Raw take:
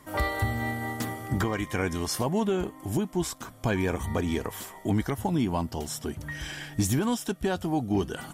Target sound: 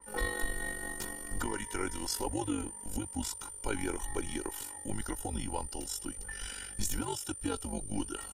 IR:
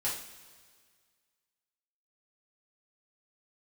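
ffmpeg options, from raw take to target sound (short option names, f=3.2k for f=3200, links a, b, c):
-af "aecho=1:1:2:0.76,aeval=exprs='val(0)+0.0126*sin(2*PI*9200*n/s)':c=same,tremolo=f=48:d=0.667,afreqshift=-100,adynamicequalizer=threshold=0.00501:dfrequency=3200:dqfactor=0.7:tfrequency=3200:tqfactor=0.7:attack=5:release=100:ratio=0.375:range=2:mode=boostabove:tftype=highshelf,volume=-6dB"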